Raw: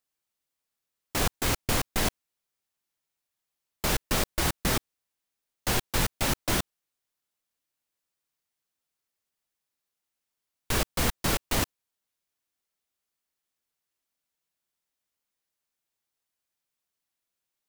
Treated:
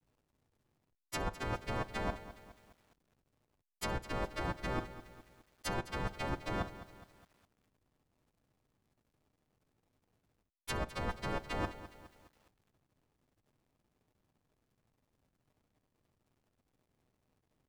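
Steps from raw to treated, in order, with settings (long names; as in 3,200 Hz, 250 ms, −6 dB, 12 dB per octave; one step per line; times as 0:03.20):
every partial snapped to a pitch grid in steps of 2 semitones
treble cut that deepens with the level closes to 1,100 Hz, closed at −18.5 dBFS
in parallel at −3 dB: output level in coarse steps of 13 dB
on the sum: flutter between parallel walls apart 11.5 metres, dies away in 0.2 s
reversed playback
downward compressor 10 to 1, threshold −38 dBFS, peak gain reduction 15 dB
reversed playback
slack as between gear wheels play −59 dBFS
feedback echo at a low word length 207 ms, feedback 55%, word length 10 bits, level −14 dB
level +4.5 dB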